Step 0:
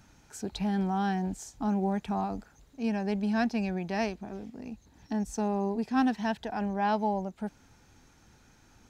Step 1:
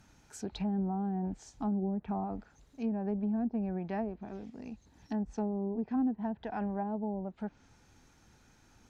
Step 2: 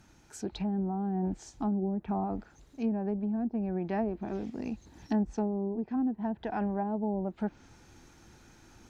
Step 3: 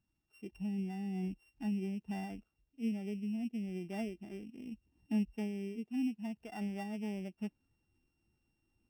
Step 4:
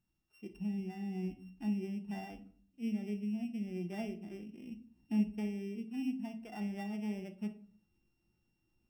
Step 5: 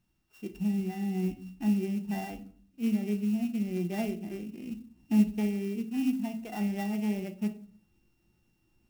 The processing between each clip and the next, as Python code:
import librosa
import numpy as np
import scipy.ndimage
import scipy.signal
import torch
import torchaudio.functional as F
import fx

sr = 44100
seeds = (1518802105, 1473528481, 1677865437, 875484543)

y1 = fx.env_lowpass_down(x, sr, base_hz=440.0, full_db=-24.5)
y1 = F.gain(torch.from_numpy(y1), -3.0).numpy()
y2 = fx.peak_eq(y1, sr, hz=340.0, db=7.5, octaves=0.22)
y2 = fx.rider(y2, sr, range_db=5, speed_s=0.5)
y2 = F.gain(torch.from_numpy(y2), 2.5).numpy()
y3 = np.r_[np.sort(y2[:len(y2) // 16 * 16].reshape(-1, 16), axis=1).ravel(), y2[len(y2) // 16 * 16:]]
y3 = fx.dmg_crackle(y3, sr, seeds[0], per_s=420.0, level_db=-49.0)
y3 = fx.spectral_expand(y3, sr, expansion=1.5)
y3 = F.gain(torch.from_numpy(y3), -5.5).numpy()
y4 = fx.room_shoebox(y3, sr, seeds[1], volume_m3=440.0, walls='furnished', distance_m=0.91)
y4 = F.gain(torch.from_numpy(y4), -1.5).numpy()
y5 = fx.clock_jitter(y4, sr, seeds[2], jitter_ms=0.027)
y5 = F.gain(torch.from_numpy(y5), 8.0).numpy()